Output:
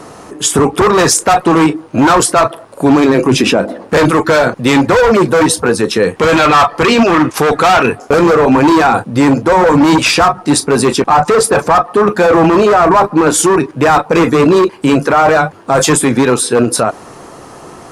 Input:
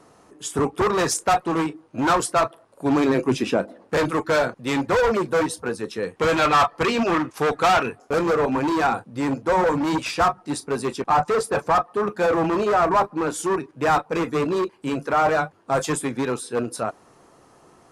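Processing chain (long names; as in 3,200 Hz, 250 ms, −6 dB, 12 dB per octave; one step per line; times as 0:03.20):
boost into a limiter +21 dB
level −1 dB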